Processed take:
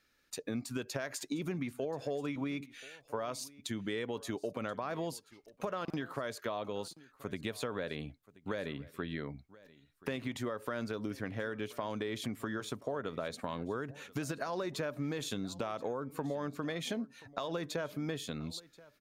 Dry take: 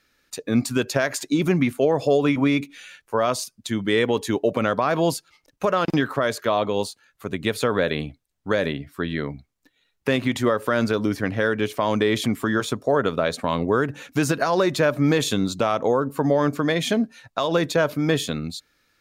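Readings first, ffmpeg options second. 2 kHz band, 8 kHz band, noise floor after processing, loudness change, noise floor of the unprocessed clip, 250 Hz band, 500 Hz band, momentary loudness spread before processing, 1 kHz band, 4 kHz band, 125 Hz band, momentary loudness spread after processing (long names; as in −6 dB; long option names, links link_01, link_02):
−16.0 dB, −13.0 dB, −69 dBFS, −16.5 dB, −72 dBFS, −16.0 dB, −16.5 dB, 9 LU, −16.0 dB, −14.5 dB, −15.5 dB, 5 LU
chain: -filter_complex "[0:a]acompressor=threshold=-27dB:ratio=4,asplit=2[link_01][link_02];[link_02]aecho=0:1:1030:0.0891[link_03];[link_01][link_03]amix=inputs=2:normalize=0,volume=-8dB"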